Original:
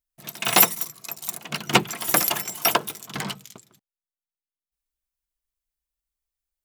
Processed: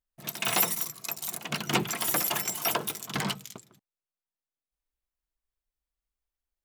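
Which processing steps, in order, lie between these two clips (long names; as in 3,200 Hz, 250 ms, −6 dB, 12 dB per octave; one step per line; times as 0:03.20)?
brickwall limiter −17 dBFS, peak gain reduction 11 dB
one half of a high-frequency compander decoder only
level +1 dB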